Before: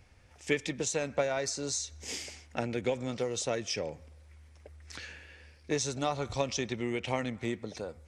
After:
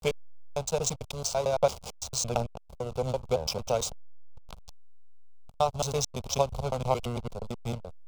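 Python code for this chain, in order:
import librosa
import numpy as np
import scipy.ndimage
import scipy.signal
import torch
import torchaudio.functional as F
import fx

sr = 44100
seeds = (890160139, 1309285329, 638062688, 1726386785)

y = fx.block_reorder(x, sr, ms=112.0, group=5)
y = fx.backlash(y, sr, play_db=-29.5)
y = fx.fixed_phaser(y, sr, hz=750.0, stages=4)
y = F.gain(torch.from_numpy(y), 8.5).numpy()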